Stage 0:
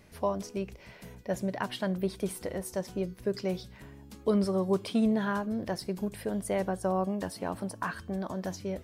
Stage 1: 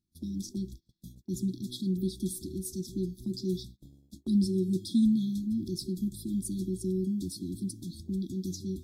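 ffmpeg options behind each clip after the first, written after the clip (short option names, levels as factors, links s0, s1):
-af "afftfilt=real='re*(1-between(b*sr/4096,380,3300))':imag='im*(1-between(b*sr/4096,380,3300))':win_size=4096:overlap=0.75,agate=range=0.0398:threshold=0.00447:ratio=16:detection=peak,volume=1.33"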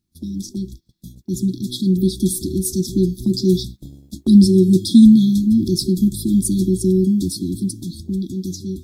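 -af "dynaudnorm=f=520:g=7:m=2.37,volume=2.66"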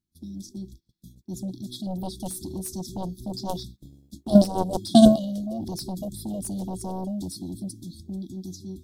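-af "aeval=exprs='0.841*(cos(1*acos(clip(val(0)/0.841,-1,1)))-cos(1*PI/2))+0.376*(cos(3*acos(clip(val(0)/0.841,-1,1)))-cos(3*PI/2))+0.0119*(cos(7*acos(clip(val(0)/0.841,-1,1)))-cos(7*PI/2))':c=same,volume=0.708"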